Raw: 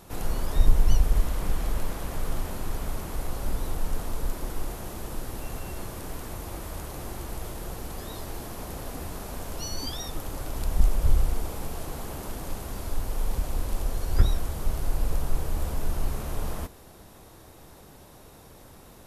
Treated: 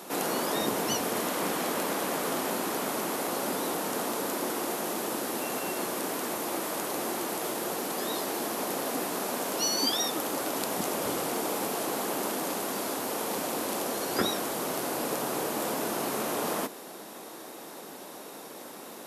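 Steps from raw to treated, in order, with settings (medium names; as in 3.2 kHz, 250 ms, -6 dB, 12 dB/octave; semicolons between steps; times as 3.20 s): high-pass 230 Hz 24 dB/octave; trim +8.5 dB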